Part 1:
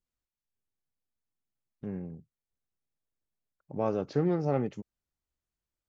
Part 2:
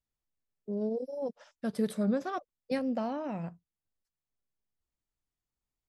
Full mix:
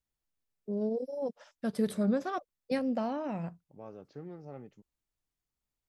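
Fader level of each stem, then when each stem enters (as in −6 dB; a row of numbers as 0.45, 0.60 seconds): −17.5, +0.5 decibels; 0.00, 0.00 seconds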